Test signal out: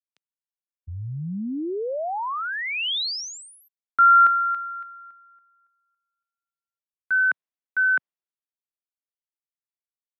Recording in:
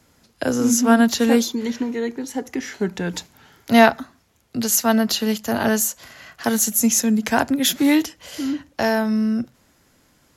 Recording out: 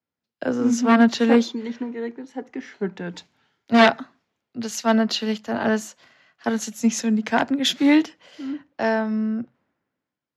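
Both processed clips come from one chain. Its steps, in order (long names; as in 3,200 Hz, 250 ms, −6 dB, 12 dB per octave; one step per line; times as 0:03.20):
wave folding −8.5 dBFS
band-pass filter 150–3,700 Hz
multiband upward and downward expander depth 70%
level −1.5 dB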